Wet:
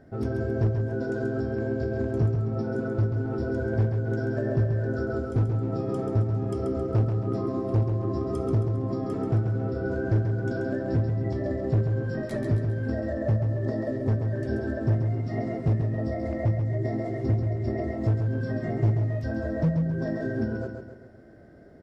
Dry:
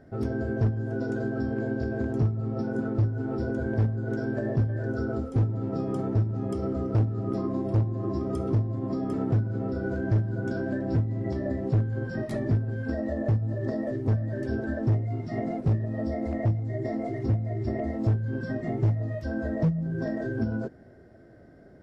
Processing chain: feedback echo 0.135 s, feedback 45%, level -6 dB

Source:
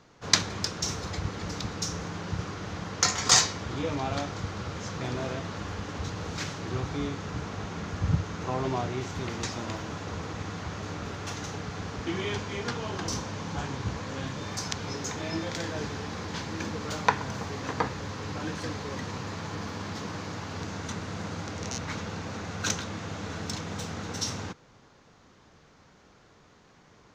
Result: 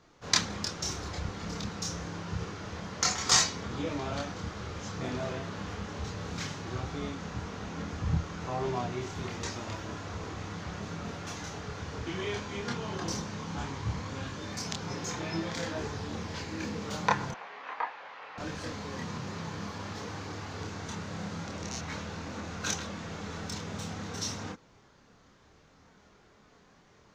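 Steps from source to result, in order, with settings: 17.31–18.38 Chebyshev band-pass 720–2600 Hz, order 2; chorus voices 4, 0.24 Hz, delay 27 ms, depth 2.9 ms

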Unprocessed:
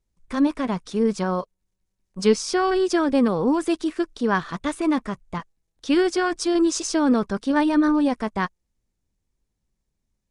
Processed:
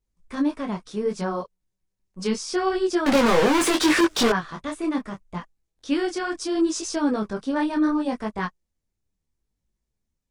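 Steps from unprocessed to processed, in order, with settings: 3.06–4.3 overdrive pedal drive 41 dB, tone 4900 Hz, clips at -8 dBFS; detuned doubles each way 25 cents

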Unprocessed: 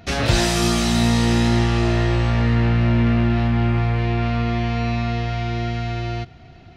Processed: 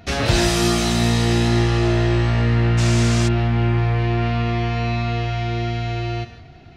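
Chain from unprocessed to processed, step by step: non-linear reverb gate 0.2 s flat, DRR 8 dB; 2.77–3.27 band noise 750–7400 Hz -29 dBFS

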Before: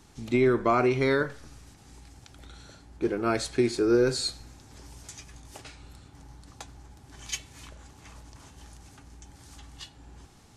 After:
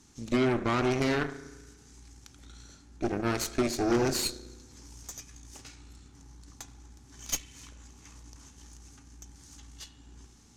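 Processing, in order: fifteen-band EQ 250 Hz +6 dB, 630 Hz -7 dB, 6300 Hz +10 dB; spring tank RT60 1.3 s, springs 34 ms, chirp 55 ms, DRR 10 dB; added harmonics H 6 -13 dB, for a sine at -10.5 dBFS; gain -6 dB

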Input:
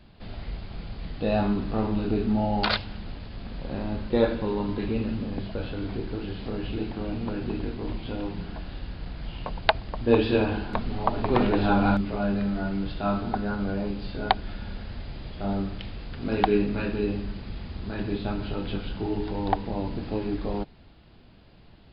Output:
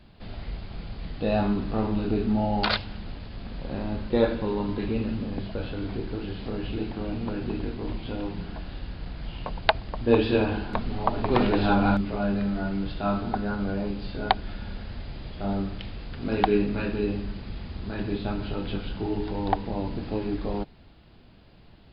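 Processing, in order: 11.31–11.75 high shelf 3900 Hz +6 dB

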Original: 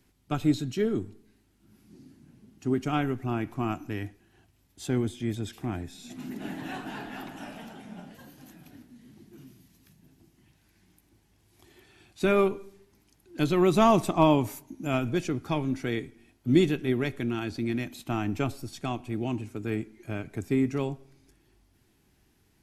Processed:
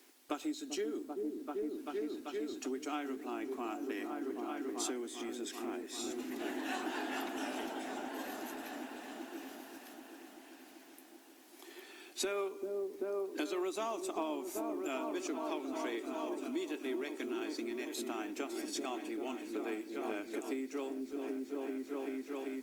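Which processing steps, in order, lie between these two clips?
dynamic EQ 7000 Hz, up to +7 dB, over -57 dBFS, Q 1; on a send: repeats that get brighter 0.389 s, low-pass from 400 Hz, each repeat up 1 oct, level -6 dB; on the sum: compressor 20:1, threshold -37 dBFS, peak gain reduction 23.5 dB; requantised 12-bit, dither triangular; steep high-pass 270 Hz 48 dB/oct; gain +5 dB; Opus 48 kbps 48000 Hz

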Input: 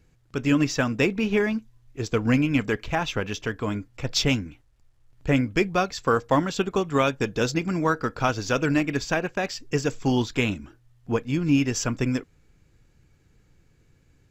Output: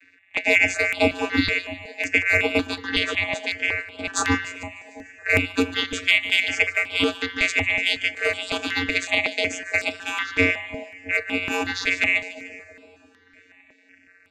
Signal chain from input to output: band-swap scrambler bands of 2000 Hz; vocoder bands 16, square 90.9 Hz; in parallel at -4.5 dB: soft clip -16 dBFS, distortion -13 dB; on the sum: split-band echo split 950 Hz, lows 0.333 s, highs 0.149 s, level -13 dB; on a send at -15 dB: reverb, pre-delay 3 ms; on the sum: step phaser 5.4 Hz 210–6300 Hz; gain +3 dB

